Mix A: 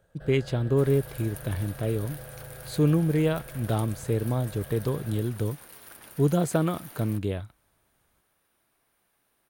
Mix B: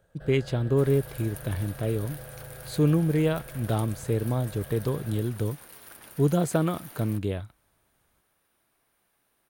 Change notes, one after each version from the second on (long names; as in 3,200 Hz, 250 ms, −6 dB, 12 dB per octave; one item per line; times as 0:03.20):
nothing changed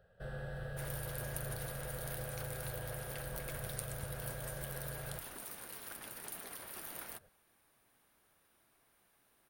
speech: muted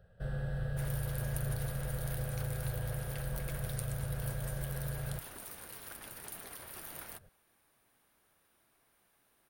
first sound: add bass and treble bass +9 dB, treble +2 dB